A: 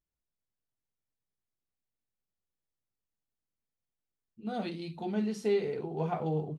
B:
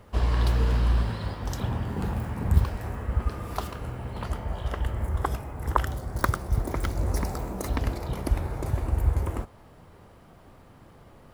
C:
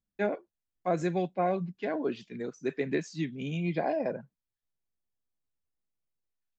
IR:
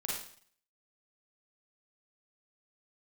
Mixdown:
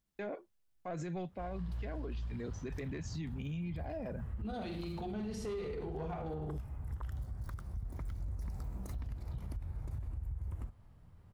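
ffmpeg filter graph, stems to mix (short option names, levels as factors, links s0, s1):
-filter_complex "[0:a]asoftclip=type=tanh:threshold=0.0531,volume=0.891,asplit=2[s0][s1];[s1]volume=0.668[s2];[1:a]adelay=1250,volume=0.141[s3];[2:a]asoftclip=type=tanh:threshold=0.0891,volume=1.19[s4];[s3][s4]amix=inputs=2:normalize=0,asubboost=boost=5:cutoff=170,acompressor=threshold=0.02:ratio=2.5,volume=1[s5];[3:a]atrim=start_sample=2205[s6];[s2][s6]afir=irnorm=-1:irlink=0[s7];[s0][s5][s7]amix=inputs=3:normalize=0,alimiter=level_in=2.82:limit=0.0631:level=0:latency=1:release=60,volume=0.355"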